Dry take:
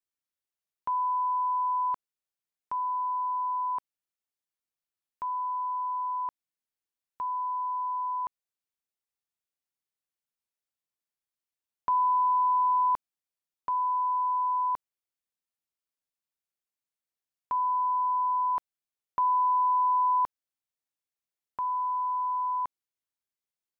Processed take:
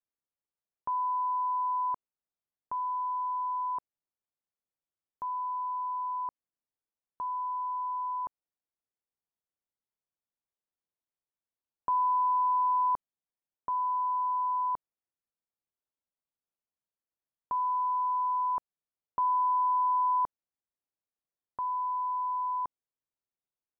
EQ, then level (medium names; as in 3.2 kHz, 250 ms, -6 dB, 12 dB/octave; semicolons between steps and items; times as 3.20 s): low-pass 1.1 kHz 12 dB/octave; 0.0 dB